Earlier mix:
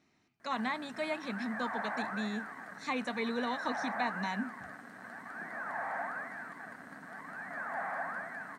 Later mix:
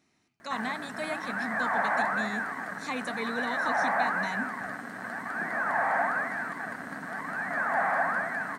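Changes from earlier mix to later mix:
speech: remove distance through air 74 m; background +10.5 dB

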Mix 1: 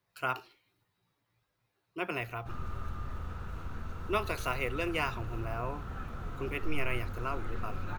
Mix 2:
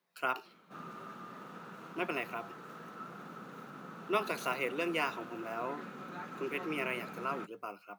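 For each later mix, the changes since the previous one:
background: entry -1.75 s; master: add elliptic high-pass 170 Hz, stop band 60 dB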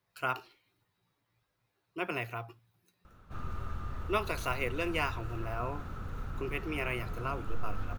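background: entry +2.60 s; master: remove elliptic high-pass 170 Hz, stop band 60 dB

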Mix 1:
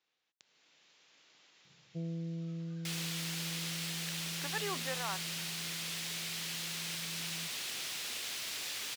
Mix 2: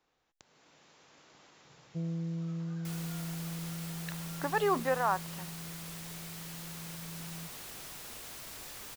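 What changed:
speech +11.5 dB; master: remove frequency weighting D

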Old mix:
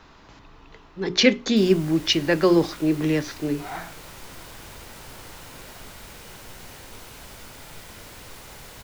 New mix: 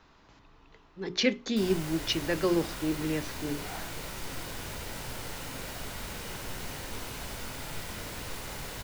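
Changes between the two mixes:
speech -9.0 dB; background: send +7.0 dB

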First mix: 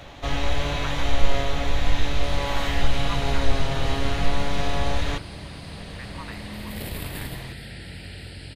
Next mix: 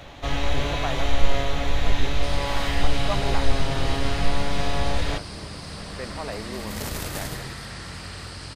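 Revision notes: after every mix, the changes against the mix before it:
speech: remove Chebyshev band-stop 180–920 Hz, order 5; second sound: remove static phaser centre 2.7 kHz, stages 4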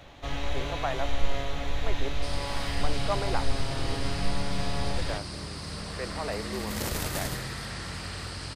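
speech: add steep high-pass 290 Hz; first sound -7.0 dB

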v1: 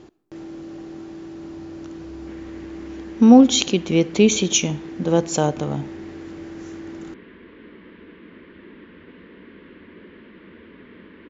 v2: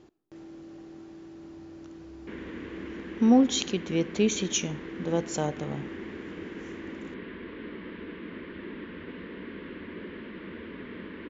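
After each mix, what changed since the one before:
speech -9.5 dB; background +4.0 dB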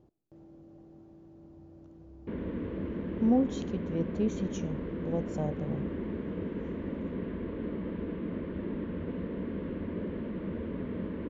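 background +11.5 dB; master: add FFT filter 140 Hz 0 dB, 370 Hz -10 dB, 570 Hz -3 dB, 1.8 kHz -20 dB

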